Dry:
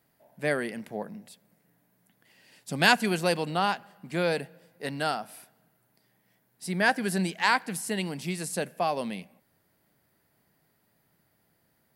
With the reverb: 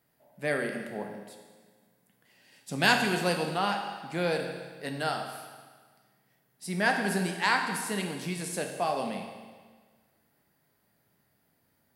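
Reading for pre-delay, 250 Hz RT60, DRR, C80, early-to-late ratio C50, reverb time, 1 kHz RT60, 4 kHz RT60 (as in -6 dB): 9 ms, 1.6 s, 2.5 dB, 6.5 dB, 5.5 dB, 1.5 s, 1.5 s, 1.5 s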